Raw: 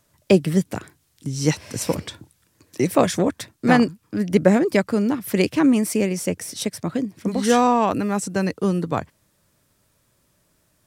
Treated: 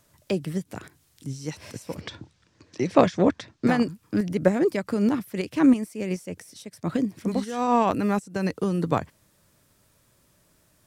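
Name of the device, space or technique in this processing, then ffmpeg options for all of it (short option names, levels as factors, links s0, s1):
de-esser from a sidechain: -filter_complex "[0:a]asettb=1/sr,asplit=3[s0][s1][s2];[s0]atrim=end=2.014[s3];[s1]atrim=start=2.01:end=3.67,asetpts=PTS-STARTPTS,afade=t=in:d=0.004:c=qsin,afade=t=out:st=1.656:d=0.004:c=qsin,lowpass=f=6000:w=0.5412,lowpass=f=6000:w=1.3066[s4];[s2]atrim=start=3.666[s5];[s3][s4]acrossfade=d=0.004:c1=hsin:c2=qsin[s6];[s6][s5]acrossfade=d=0.004:c1=qsin:c2=hsin,asplit=2[s7][s8];[s8]highpass=f=6800:w=0.5412,highpass=f=6800:w=1.3066,apad=whole_len=479111[s9];[s7][s9]sidechaincompress=threshold=0.00251:ratio=4:attack=3.9:release=97,volume=1.19"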